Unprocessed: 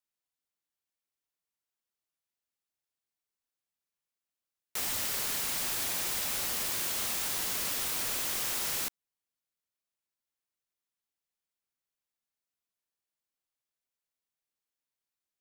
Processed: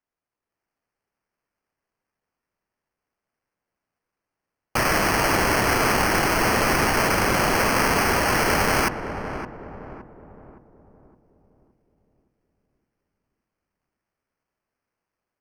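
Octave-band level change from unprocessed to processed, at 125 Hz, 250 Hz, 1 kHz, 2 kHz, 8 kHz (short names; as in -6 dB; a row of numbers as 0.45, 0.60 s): +23.5, +23.5, +22.0, +18.5, +4.0 dB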